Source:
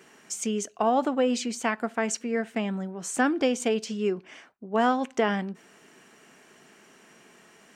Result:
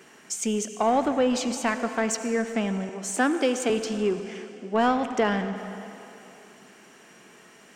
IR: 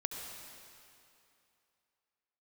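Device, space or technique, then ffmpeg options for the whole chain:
saturated reverb return: -filter_complex "[0:a]asplit=2[s0][s1];[1:a]atrim=start_sample=2205[s2];[s1][s2]afir=irnorm=-1:irlink=0,asoftclip=type=tanh:threshold=0.0668,volume=0.841[s3];[s0][s3]amix=inputs=2:normalize=0,asettb=1/sr,asplit=3[s4][s5][s6];[s4]atrim=end=2.894[s7];[s5]atrim=start=2.89:end=3.7,asetpts=PTS-STARTPTS,afade=t=in:d=0.004:c=qsin,afade=t=out:st=0.806:d=0.004:c=qsin,highpass=f=230:w=0.5412,highpass=f=230:w=1.3066[s8];[s6]atrim=start=3.696[s9];[s7][s8]acrossfade=d=0.004:c1=hsin:c2=qsin[s10];[s10][s9]acrossfade=d=0.004:c1=qsin:c2=hsin,volume=0.794"

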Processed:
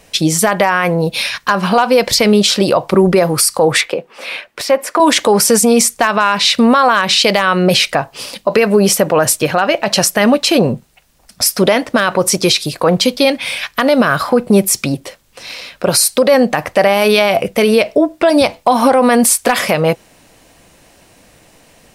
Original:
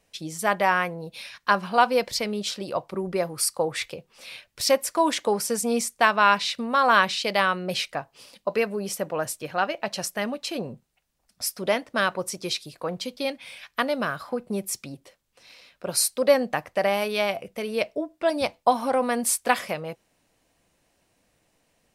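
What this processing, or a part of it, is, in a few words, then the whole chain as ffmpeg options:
loud club master: -filter_complex "[0:a]acompressor=threshold=0.0631:ratio=2.5,asoftclip=type=hard:threshold=0.188,alimiter=level_in=13.3:limit=0.891:release=50:level=0:latency=1,asettb=1/sr,asplit=3[s0][s1][s2];[s0]atrim=end=3.814[s3];[s1]atrim=start=3.81:end=5,asetpts=PTS-STARTPTS,afade=t=in:d=0.004:c=qsin,afade=t=out:st=1.186:d=0.004:c=qsin,acrossover=split=230 2600:gain=0.0891 1 0.224[s4][s5][s6];[s4][s5][s6]amix=inputs=3:normalize=0[s7];[s2]atrim=start=4.996[s8];[s3][s7]acrossfade=d=0.004:c1=hsin:c2=qsin[s9];[s9][s8]acrossfade=d=0.004:c1=qsin:c2=hsin,volume=0.891"

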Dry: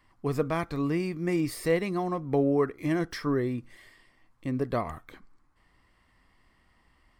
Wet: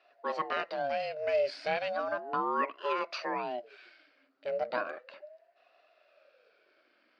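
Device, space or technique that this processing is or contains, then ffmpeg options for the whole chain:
voice changer toy: -af "aeval=exprs='val(0)*sin(2*PI*490*n/s+490*0.45/0.35*sin(2*PI*0.35*n/s))':c=same,highpass=500,equalizer=f=600:t=q:w=4:g=9,equalizer=f=860:t=q:w=4:g=-8,equalizer=f=1400:t=q:w=4:g=4,equalizer=f=2700:t=q:w=4:g=4,equalizer=f=4600:t=q:w=4:g=8,lowpass=f=4700:w=0.5412,lowpass=f=4700:w=1.3066"

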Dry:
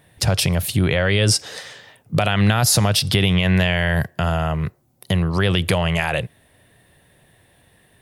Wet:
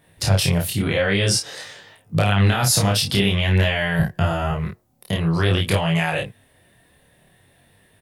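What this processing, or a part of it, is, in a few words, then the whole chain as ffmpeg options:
double-tracked vocal: -filter_complex "[0:a]asettb=1/sr,asplit=3[s0][s1][s2];[s0]atrim=end=3.994[s3];[s1]atrim=start=3.99:end=4.51,asetpts=PTS-STARTPTS,afade=t=in:d=0.004:c=qsin,afade=t=out:st=0.516:d=0.004:c=qsin,lowshelf=f=210:g=8.5[s4];[s2]atrim=start=4.506[s5];[s3][s4]acrossfade=d=0.004:c1=hsin:c2=qsin[s6];[s6][s5]acrossfade=d=0.004:c1=qsin:c2=hsin,asplit=2[s7][s8];[s8]adelay=30,volume=0.75[s9];[s7][s9]amix=inputs=2:normalize=0,flanger=delay=19:depth=7.2:speed=0.5"

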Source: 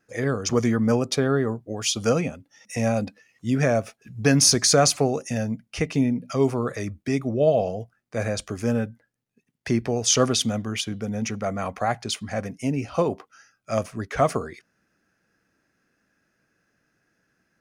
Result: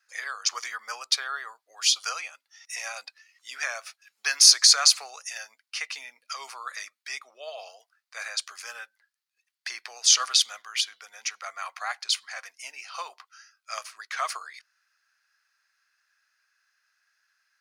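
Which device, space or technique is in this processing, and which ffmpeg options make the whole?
headphones lying on a table: -filter_complex "[0:a]asettb=1/sr,asplit=3[s0][s1][s2];[s0]atrim=end=7.194[s3];[s1]atrim=start=7.19:end=7.59,asetpts=PTS-STARTPTS,afade=t=in:d=0.004:c=qsin,afade=t=out:st=0.396:d=0.004:c=qsin,highshelf=f=4600:g=-5.5[s4];[s2]atrim=start=7.586[s5];[s3][s4]acrossfade=d=0.004:c1=hsin:c2=qsin[s6];[s6][s5]acrossfade=d=0.004:c1=qsin:c2=hsin,highpass=f=1100:w=0.5412,highpass=f=1100:w=1.3066,equalizer=f=4400:t=o:w=0.52:g=8"

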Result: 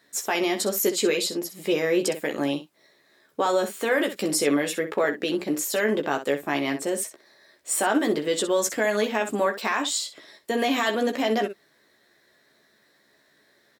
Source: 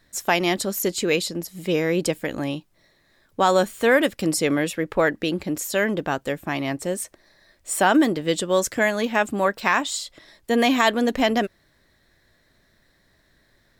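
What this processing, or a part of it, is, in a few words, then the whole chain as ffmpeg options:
clipper into limiter: -af "asoftclip=type=hard:threshold=0.447,alimiter=limit=0.188:level=0:latency=1,highpass=260,equalizer=f=410:w=6.9:g=4.5,aecho=1:1:14|63:0.562|0.282"

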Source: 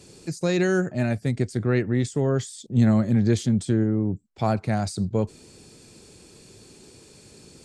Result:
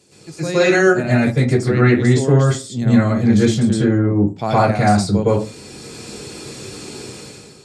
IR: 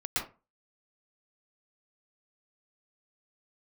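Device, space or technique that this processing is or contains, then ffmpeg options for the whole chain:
far laptop microphone: -filter_complex "[1:a]atrim=start_sample=2205[s0];[0:a][s0]afir=irnorm=-1:irlink=0,highpass=f=190:p=1,dynaudnorm=f=130:g=7:m=4.73,volume=0.891"

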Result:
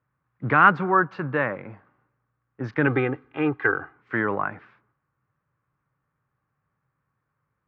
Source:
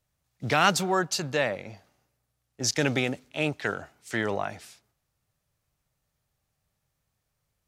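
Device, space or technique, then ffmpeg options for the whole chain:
bass cabinet: -filter_complex "[0:a]asettb=1/sr,asplit=3[s0][s1][s2];[s0]atrim=end=2.874[s3];[s1]atrim=start=2.87:end=3.97,asetpts=PTS-STARTPTS,afade=t=in:d=0.004:c=qsin,afade=t=out:st=1.096:d=0.004:c=qsin,aecho=1:1:2.5:0.71,atrim=end_sample=48510[s4];[s2]atrim=start=3.966[s5];[s3][s4]acrossfade=d=0.004:c1=hsin:c2=qsin[s6];[s6][s5]acrossfade=d=0.004:c1=qsin:c2=hsin,highpass=78,equalizer=f=80:t=q:w=4:g=-8,equalizer=f=130:t=q:w=4:g=4,equalizer=f=300:t=q:w=4:g=4,equalizer=f=670:t=q:w=4:g=-8,equalizer=f=1100:t=q:w=4:g=9,equalizer=f=1500:t=q:w=4:g=6,lowpass=f=2000:w=0.5412,lowpass=f=2000:w=1.3066,volume=1.33"

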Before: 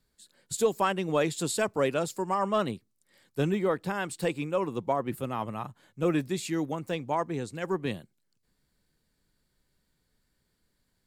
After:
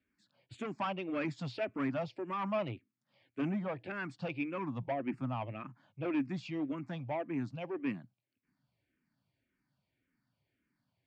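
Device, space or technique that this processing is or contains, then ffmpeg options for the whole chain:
barber-pole phaser into a guitar amplifier: -filter_complex "[0:a]asplit=2[s0][s1];[s1]afreqshift=-1.8[s2];[s0][s2]amix=inputs=2:normalize=1,asoftclip=type=tanh:threshold=0.0422,highpass=100,equalizer=f=120:t=q:w=4:g=8,equalizer=f=270:t=q:w=4:g=8,equalizer=f=450:t=q:w=4:g=-9,equalizer=f=650:t=q:w=4:g=4,equalizer=f=2400:t=q:w=4:g=7,equalizer=f=3900:t=q:w=4:g=-9,lowpass=f=4300:w=0.5412,lowpass=f=4300:w=1.3066,volume=0.708"

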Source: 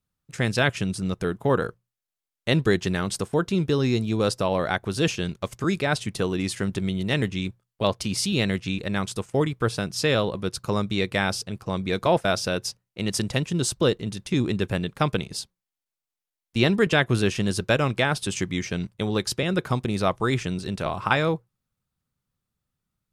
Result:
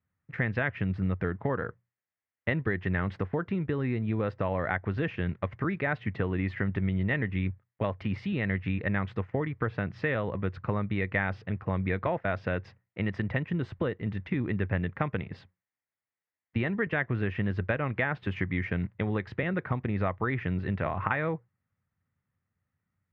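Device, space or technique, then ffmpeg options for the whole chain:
bass amplifier: -af "acompressor=threshold=0.0501:ratio=6,highpass=77,equalizer=f=91:t=q:w=4:g=10,equalizer=f=380:t=q:w=4:g=-3,equalizer=f=1900:t=q:w=4:g=9,lowpass=f=2300:w=0.5412,lowpass=f=2300:w=1.3066"

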